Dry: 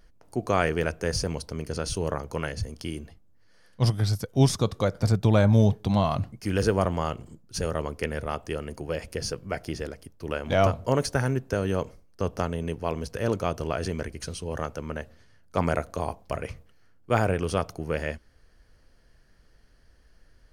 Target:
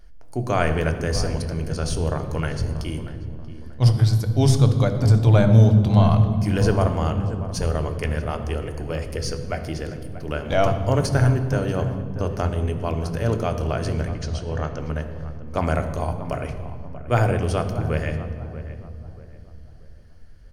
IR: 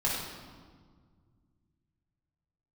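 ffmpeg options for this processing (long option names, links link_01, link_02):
-filter_complex "[0:a]asettb=1/sr,asplit=3[link_01][link_02][link_03];[link_01]atrim=end=14.084[link_04];[link_02]atrim=start=14.08:end=14.8,asetpts=PTS-STARTPTS,afade=type=in:duration=0.004:curve=qsin,afade=type=out:start_time=0.716:duration=0.004:curve=qsin,lowpass=frequency=6600:width=0.5412,lowpass=frequency=6600:width=1.3066[link_05];[link_03]atrim=start=14.796[link_06];[link_04][link_05]acrossfade=duration=0.004:curve1=hsin:curve2=qsin[link_07];[link_07][link_06]acrossfade=duration=0.004:curve1=qsin:curve2=hsin,asplit=2[link_08][link_09];[link_09]adelay=635,lowpass=frequency=1600:poles=1,volume=-13dB,asplit=2[link_10][link_11];[link_11]adelay=635,lowpass=frequency=1600:poles=1,volume=0.37,asplit=2[link_12][link_13];[link_13]adelay=635,lowpass=frequency=1600:poles=1,volume=0.37,asplit=2[link_14][link_15];[link_15]adelay=635,lowpass=frequency=1600:poles=1,volume=0.37[link_16];[link_08][link_10][link_12][link_14][link_16]amix=inputs=5:normalize=0,asplit=2[link_17][link_18];[1:a]atrim=start_sample=2205,asetrate=35721,aresample=44100,lowshelf=frequency=240:gain=10.5[link_19];[link_18][link_19]afir=irnorm=-1:irlink=0,volume=-16dB[link_20];[link_17][link_20]amix=inputs=2:normalize=0"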